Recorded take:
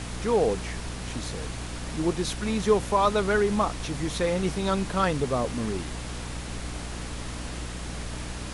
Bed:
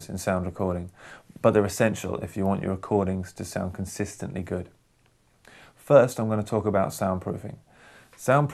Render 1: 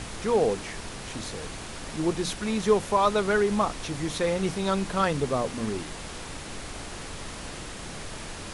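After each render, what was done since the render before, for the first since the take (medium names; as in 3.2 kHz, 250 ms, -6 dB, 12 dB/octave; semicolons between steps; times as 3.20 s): de-hum 60 Hz, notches 5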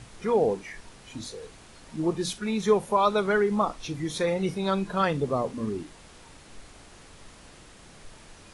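noise print and reduce 12 dB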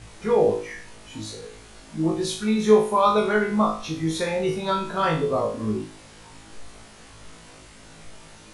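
flutter echo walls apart 3.2 m, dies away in 0.44 s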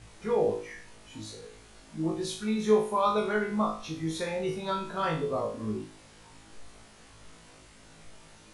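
trim -7 dB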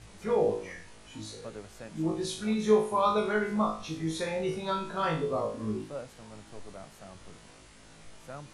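add bed -23.5 dB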